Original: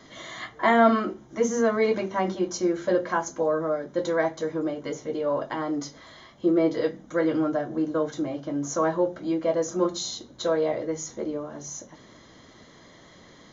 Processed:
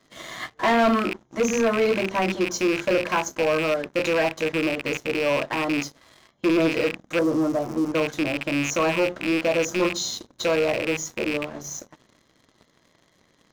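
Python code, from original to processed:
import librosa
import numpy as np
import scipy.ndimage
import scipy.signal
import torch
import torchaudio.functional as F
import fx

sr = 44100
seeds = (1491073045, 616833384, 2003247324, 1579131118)

y = fx.rattle_buzz(x, sr, strikes_db=-40.0, level_db=-19.0)
y = fx.ellip_bandstop(y, sr, low_hz=1200.0, high_hz=5400.0, order=3, stop_db=40, at=(7.19, 7.94))
y = fx.leveller(y, sr, passes=3)
y = F.gain(torch.from_numpy(y), -7.5).numpy()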